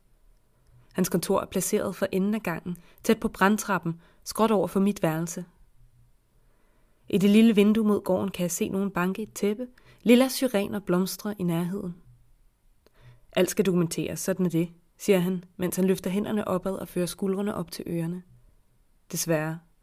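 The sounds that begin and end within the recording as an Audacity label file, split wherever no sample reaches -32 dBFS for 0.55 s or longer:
0.980000	5.420000	sound
7.100000	11.910000	sound
13.370000	18.180000	sound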